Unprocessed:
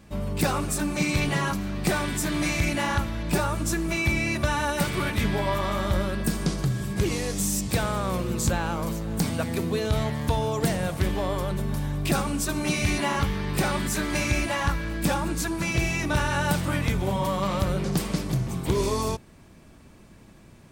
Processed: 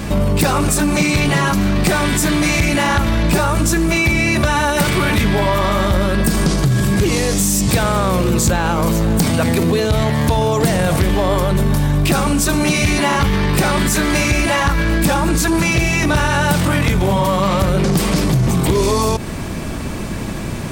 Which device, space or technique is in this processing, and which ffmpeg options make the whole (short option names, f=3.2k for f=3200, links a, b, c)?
loud club master: -af "acompressor=threshold=-29dB:ratio=2,asoftclip=type=hard:threshold=-22.5dB,alimiter=level_in=34.5dB:limit=-1dB:release=50:level=0:latency=1,volume=-7.5dB"